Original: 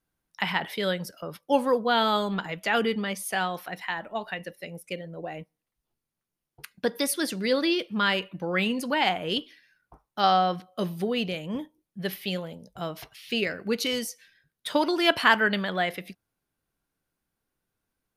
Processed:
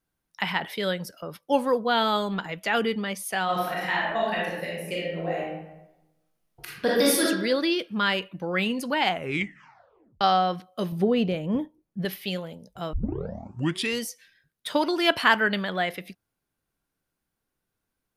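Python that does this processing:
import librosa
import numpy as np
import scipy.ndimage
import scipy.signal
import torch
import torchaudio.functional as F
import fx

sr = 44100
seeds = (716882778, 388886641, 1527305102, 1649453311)

y = fx.reverb_throw(x, sr, start_s=3.44, length_s=3.78, rt60_s=1.0, drr_db=-6.0)
y = fx.tilt_shelf(y, sr, db=6.5, hz=1500.0, at=(10.92, 12.05))
y = fx.edit(y, sr, fx.tape_stop(start_s=9.1, length_s=1.11),
    fx.tape_start(start_s=12.93, length_s=1.07), tone=tone)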